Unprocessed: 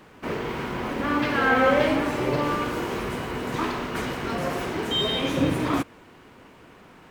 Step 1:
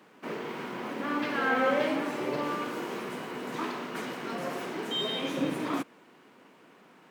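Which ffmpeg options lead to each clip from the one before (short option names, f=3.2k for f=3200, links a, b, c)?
-af "highpass=f=170:w=0.5412,highpass=f=170:w=1.3066,volume=-6.5dB"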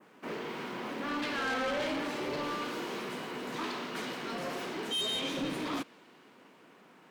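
-af "adynamicequalizer=threshold=0.00316:dfrequency=4100:dqfactor=1:tfrequency=4100:tqfactor=1:attack=5:release=100:ratio=0.375:range=4:mode=boostabove:tftype=bell,asoftclip=type=tanh:threshold=-27.5dB,volume=-1.5dB"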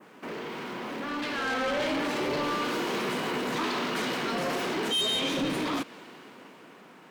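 -filter_complex "[0:a]asplit=2[a][b];[b]acompressor=threshold=-41dB:ratio=6,volume=1dB[c];[a][c]amix=inputs=2:normalize=0,alimiter=level_in=6.5dB:limit=-24dB:level=0:latency=1:release=14,volume=-6.5dB,dynaudnorm=f=330:g=9:m=7dB"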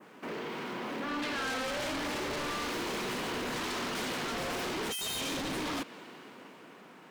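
-af "aeval=exprs='0.0355*(abs(mod(val(0)/0.0355+3,4)-2)-1)':c=same,volume=-1.5dB"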